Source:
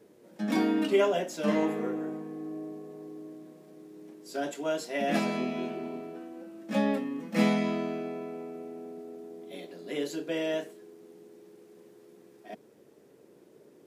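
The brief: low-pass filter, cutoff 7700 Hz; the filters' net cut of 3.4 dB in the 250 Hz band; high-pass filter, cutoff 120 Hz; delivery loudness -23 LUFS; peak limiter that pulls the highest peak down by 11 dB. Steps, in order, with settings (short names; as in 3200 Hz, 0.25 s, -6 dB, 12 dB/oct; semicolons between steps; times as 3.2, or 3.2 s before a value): HPF 120 Hz; LPF 7700 Hz; bell 250 Hz -4 dB; gain +13.5 dB; limiter -11 dBFS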